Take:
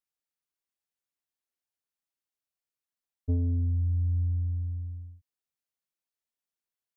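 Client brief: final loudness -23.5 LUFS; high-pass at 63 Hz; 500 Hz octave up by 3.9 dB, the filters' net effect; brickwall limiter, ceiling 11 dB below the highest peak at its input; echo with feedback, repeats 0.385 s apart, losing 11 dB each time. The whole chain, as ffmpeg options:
-af "highpass=63,equalizer=f=500:t=o:g=4.5,alimiter=level_in=4dB:limit=-24dB:level=0:latency=1,volume=-4dB,aecho=1:1:385|770|1155:0.282|0.0789|0.0221,volume=13.5dB"

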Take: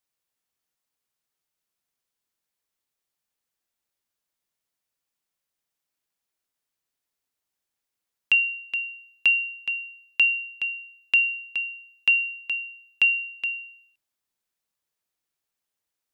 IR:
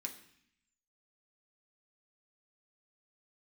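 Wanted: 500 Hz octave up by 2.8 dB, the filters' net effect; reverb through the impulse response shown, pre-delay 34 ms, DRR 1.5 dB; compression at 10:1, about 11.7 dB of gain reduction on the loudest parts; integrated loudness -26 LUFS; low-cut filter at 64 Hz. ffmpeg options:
-filter_complex "[0:a]highpass=64,equalizer=f=500:t=o:g=3.5,acompressor=threshold=-27dB:ratio=10,asplit=2[a][b];[1:a]atrim=start_sample=2205,adelay=34[c];[b][c]afir=irnorm=-1:irlink=0,volume=1dB[d];[a][d]amix=inputs=2:normalize=0,volume=2.5dB"

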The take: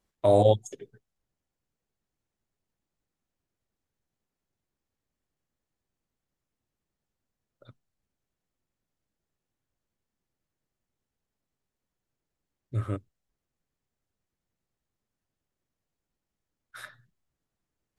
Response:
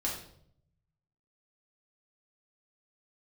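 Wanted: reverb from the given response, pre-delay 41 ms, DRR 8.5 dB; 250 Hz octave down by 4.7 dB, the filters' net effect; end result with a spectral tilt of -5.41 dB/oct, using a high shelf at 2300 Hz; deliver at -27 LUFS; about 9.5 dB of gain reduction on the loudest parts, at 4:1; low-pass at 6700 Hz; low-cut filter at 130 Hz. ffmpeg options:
-filter_complex "[0:a]highpass=130,lowpass=6.7k,equalizer=f=250:t=o:g=-6,highshelf=f=2.3k:g=3,acompressor=threshold=-28dB:ratio=4,asplit=2[a][b];[1:a]atrim=start_sample=2205,adelay=41[c];[b][c]afir=irnorm=-1:irlink=0,volume=-13dB[d];[a][d]amix=inputs=2:normalize=0,volume=9dB"

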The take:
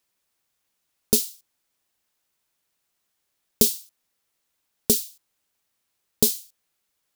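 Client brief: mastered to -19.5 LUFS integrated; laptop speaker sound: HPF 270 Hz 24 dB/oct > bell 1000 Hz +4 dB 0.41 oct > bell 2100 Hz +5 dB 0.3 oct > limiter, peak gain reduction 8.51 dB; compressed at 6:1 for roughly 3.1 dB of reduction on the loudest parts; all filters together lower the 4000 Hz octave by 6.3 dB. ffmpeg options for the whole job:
-af "equalizer=f=4k:t=o:g=-8.5,acompressor=threshold=-18dB:ratio=6,highpass=f=270:w=0.5412,highpass=f=270:w=1.3066,equalizer=f=1k:t=o:w=0.41:g=4,equalizer=f=2.1k:t=o:w=0.3:g=5,volume=11.5dB,alimiter=limit=-2dB:level=0:latency=1"

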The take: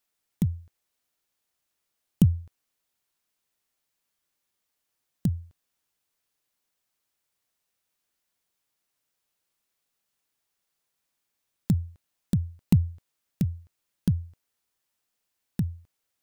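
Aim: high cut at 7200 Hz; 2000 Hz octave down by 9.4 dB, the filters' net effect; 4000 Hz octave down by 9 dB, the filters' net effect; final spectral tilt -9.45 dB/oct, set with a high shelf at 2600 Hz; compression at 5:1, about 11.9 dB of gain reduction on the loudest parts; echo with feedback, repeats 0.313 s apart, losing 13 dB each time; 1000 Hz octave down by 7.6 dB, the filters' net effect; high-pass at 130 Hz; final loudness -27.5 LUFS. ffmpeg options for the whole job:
-af "highpass=130,lowpass=7.2k,equalizer=f=1k:t=o:g=-8.5,equalizer=f=2k:t=o:g=-6.5,highshelf=f=2.6k:g=-3.5,equalizer=f=4k:t=o:g=-5.5,acompressor=threshold=-29dB:ratio=5,aecho=1:1:313|626|939:0.224|0.0493|0.0108,volume=13dB"

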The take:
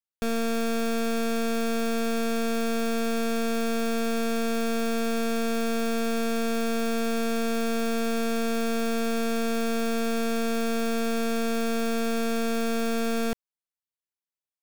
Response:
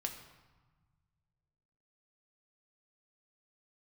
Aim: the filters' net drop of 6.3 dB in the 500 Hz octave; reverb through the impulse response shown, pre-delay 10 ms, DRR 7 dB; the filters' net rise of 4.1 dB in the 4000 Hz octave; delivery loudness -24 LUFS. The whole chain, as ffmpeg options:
-filter_complex "[0:a]equalizer=f=500:t=o:g=-7.5,equalizer=f=4k:t=o:g=5,asplit=2[a][b];[1:a]atrim=start_sample=2205,adelay=10[c];[b][c]afir=irnorm=-1:irlink=0,volume=-7dB[d];[a][d]amix=inputs=2:normalize=0,volume=4dB"

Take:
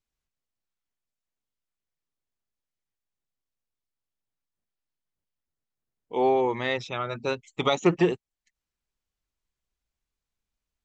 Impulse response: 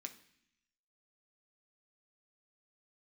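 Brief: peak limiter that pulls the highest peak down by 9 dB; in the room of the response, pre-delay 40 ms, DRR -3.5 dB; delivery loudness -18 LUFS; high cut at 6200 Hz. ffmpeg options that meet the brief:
-filter_complex "[0:a]lowpass=6.2k,alimiter=limit=-17.5dB:level=0:latency=1,asplit=2[a][b];[1:a]atrim=start_sample=2205,adelay=40[c];[b][c]afir=irnorm=-1:irlink=0,volume=7.5dB[d];[a][d]amix=inputs=2:normalize=0,volume=7.5dB"

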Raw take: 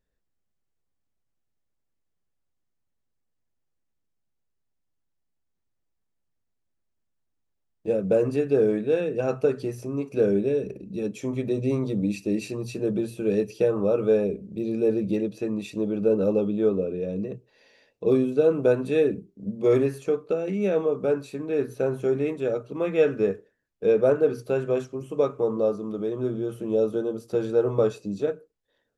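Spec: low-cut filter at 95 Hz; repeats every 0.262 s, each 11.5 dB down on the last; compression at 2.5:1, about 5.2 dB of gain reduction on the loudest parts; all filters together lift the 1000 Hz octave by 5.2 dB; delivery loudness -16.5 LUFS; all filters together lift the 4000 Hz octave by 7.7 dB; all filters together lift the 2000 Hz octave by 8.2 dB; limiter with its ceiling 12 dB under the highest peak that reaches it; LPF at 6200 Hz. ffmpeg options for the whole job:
-af "highpass=95,lowpass=6.2k,equalizer=f=1k:t=o:g=4.5,equalizer=f=2k:t=o:g=8,equalizer=f=4k:t=o:g=7,acompressor=threshold=-22dB:ratio=2.5,alimiter=limit=-24dB:level=0:latency=1,aecho=1:1:262|524|786:0.266|0.0718|0.0194,volume=16dB"

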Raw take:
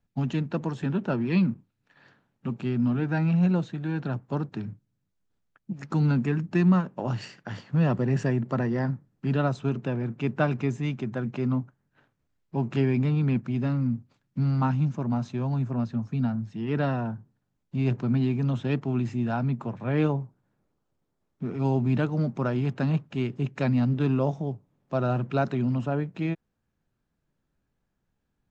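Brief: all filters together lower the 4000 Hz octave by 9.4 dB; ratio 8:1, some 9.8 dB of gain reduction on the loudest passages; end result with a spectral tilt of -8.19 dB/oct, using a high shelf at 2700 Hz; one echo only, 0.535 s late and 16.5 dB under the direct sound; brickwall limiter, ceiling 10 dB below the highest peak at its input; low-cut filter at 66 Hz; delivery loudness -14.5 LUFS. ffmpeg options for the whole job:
-af "highpass=66,highshelf=f=2.7k:g=-7.5,equalizer=f=4k:t=o:g=-7,acompressor=threshold=-27dB:ratio=8,alimiter=level_in=4dB:limit=-24dB:level=0:latency=1,volume=-4dB,aecho=1:1:535:0.15,volume=22dB"

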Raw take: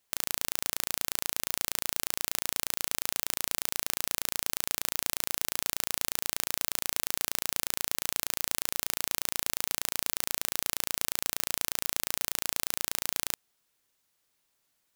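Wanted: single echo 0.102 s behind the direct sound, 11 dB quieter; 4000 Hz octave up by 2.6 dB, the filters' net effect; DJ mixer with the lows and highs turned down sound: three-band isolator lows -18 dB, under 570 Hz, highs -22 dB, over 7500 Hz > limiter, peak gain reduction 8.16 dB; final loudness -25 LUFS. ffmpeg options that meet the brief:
-filter_complex "[0:a]acrossover=split=570 7500:gain=0.126 1 0.0794[a][b][c];[a][b][c]amix=inputs=3:normalize=0,equalizer=f=4k:t=o:g=4,aecho=1:1:102:0.282,volume=16.5dB,alimiter=limit=-4dB:level=0:latency=1"

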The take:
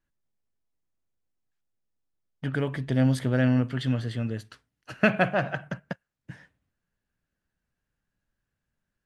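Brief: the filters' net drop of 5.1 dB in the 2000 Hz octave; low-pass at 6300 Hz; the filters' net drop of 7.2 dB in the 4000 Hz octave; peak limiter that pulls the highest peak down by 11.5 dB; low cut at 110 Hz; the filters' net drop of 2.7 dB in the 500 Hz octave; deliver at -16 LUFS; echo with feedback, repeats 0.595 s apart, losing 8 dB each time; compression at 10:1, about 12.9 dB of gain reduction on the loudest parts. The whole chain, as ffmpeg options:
-af "highpass=110,lowpass=6.3k,equalizer=f=500:t=o:g=-3,equalizer=f=2k:t=o:g=-5.5,equalizer=f=4k:t=o:g=-7,acompressor=threshold=-32dB:ratio=10,alimiter=level_in=4dB:limit=-24dB:level=0:latency=1,volume=-4dB,aecho=1:1:595|1190|1785|2380|2975:0.398|0.159|0.0637|0.0255|0.0102,volume=24dB"

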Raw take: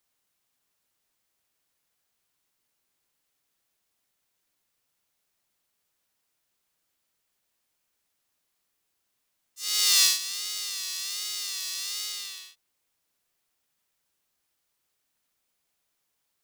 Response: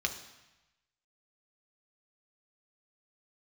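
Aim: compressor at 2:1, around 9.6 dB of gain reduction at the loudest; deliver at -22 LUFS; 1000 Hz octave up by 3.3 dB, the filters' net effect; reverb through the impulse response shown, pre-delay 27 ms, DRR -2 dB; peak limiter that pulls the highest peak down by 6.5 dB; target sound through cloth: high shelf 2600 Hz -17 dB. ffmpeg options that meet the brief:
-filter_complex "[0:a]equalizer=f=1k:t=o:g=8,acompressor=threshold=-32dB:ratio=2,alimiter=limit=-19dB:level=0:latency=1,asplit=2[a][b];[1:a]atrim=start_sample=2205,adelay=27[c];[b][c]afir=irnorm=-1:irlink=0,volume=-3dB[d];[a][d]amix=inputs=2:normalize=0,highshelf=f=2.6k:g=-17,volume=19dB"

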